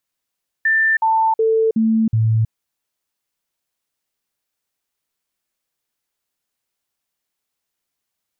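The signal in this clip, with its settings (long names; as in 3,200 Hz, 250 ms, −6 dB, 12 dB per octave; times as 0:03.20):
stepped sweep 1,780 Hz down, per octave 1, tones 5, 0.32 s, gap 0.05 s −12.5 dBFS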